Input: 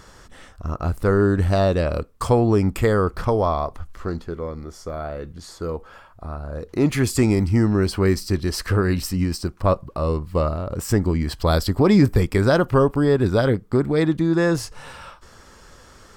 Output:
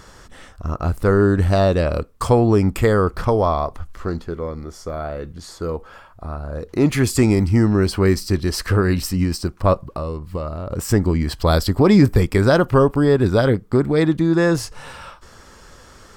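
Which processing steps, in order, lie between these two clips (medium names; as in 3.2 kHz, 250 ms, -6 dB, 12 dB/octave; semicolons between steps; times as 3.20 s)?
9.87–10.71 s: compression 5:1, threshold -26 dBFS, peak gain reduction 9.5 dB; trim +2.5 dB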